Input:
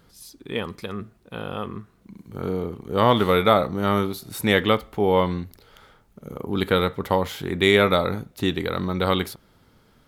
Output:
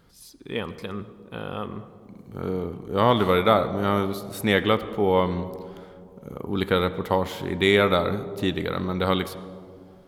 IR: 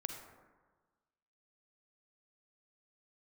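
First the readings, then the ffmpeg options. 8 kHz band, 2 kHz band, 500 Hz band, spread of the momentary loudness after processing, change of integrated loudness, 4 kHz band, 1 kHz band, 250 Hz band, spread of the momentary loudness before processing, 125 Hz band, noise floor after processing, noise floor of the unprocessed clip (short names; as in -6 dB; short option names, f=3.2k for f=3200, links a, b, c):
-3.5 dB, -2.0 dB, -1.0 dB, 20 LU, -1.5 dB, -2.5 dB, -1.5 dB, -1.0 dB, 17 LU, -1.5 dB, -49 dBFS, -59 dBFS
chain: -filter_complex "[0:a]asplit=2[a][b];[1:a]atrim=start_sample=2205,asetrate=22491,aresample=44100,highshelf=f=5.7k:g=-11[c];[b][c]afir=irnorm=-1:irlink=0,volume=-8.5dB[d];[a][d]amix=inputs=2:normalize=0,volume=-4.5dB"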